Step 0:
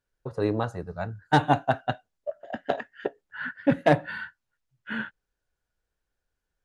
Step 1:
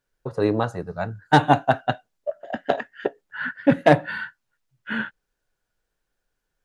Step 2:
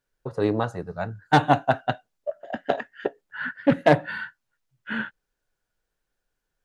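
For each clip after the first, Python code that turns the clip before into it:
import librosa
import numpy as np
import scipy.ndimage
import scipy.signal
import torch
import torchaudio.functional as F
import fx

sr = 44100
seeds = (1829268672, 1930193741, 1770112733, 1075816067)

y1 = fx.peak_eq(x, sr, hz=65.0, db=-13.0, octaves=0.65)
y1 = y1 * 10.0 ** (5.0 / 20.0)
y2 = fx.doppler_dist(y1, sr, depth_ms=0.14)
y2 = y2 * 10.0 ** (-2.0 / 20.0)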